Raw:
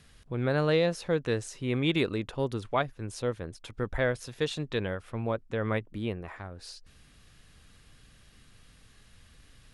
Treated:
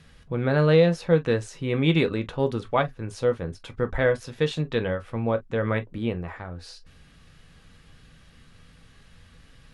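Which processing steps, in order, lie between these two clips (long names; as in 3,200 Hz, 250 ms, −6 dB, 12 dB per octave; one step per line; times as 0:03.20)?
low-pass filter 3,800 Hz 6 dB per octave
on a send: convolution reverb, pre-delay 3 ms, DRR 7 dB
on the sum: level +4.5 dB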